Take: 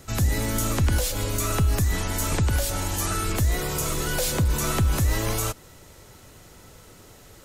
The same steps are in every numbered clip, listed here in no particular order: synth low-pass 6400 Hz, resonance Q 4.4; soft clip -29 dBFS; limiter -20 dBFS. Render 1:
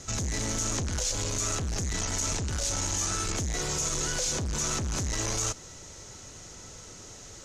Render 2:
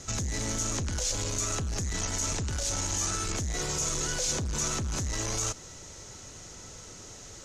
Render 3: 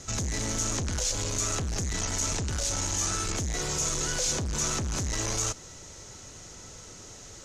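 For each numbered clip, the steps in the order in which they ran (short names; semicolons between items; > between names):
soft clip > synth low-pass > limiter; limiter > soft clip > synth low-pass; soft clip > limiter > synth low-pass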